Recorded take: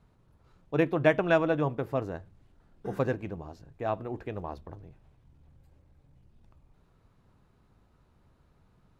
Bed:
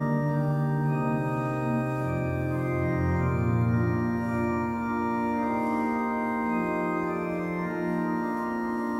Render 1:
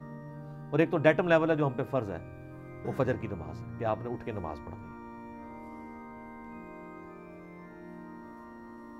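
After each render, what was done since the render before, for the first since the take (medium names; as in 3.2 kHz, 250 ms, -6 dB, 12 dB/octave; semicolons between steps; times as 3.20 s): add bed -18 dB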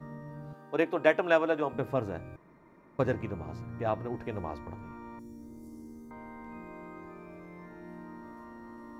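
0.53–1.73 s: high-pass 340 Hz; 2.36–2.99 s: room tone; 5.19–6.11 s: FFT filter 360 Hz 0 dB, 750 Hz -19 dB, 2.5 kHz -19 dB, 6.1 kHz +9 dB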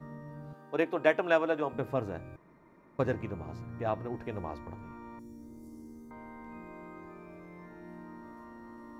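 trim -1.5 dB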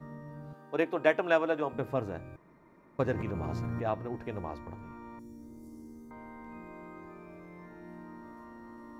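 3.15–3.83 s: level flattener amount 100%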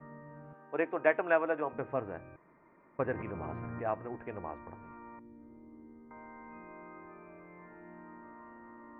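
steep low-pass 2.4 kHz 36 dB/octave; bass shelf 300 Hz -9 dB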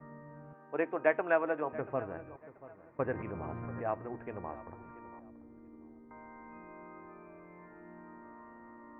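distance through air 190 m; filtered feedback delay 684 ms, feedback 29%, low-pass 2.1 kHz, level -17 dB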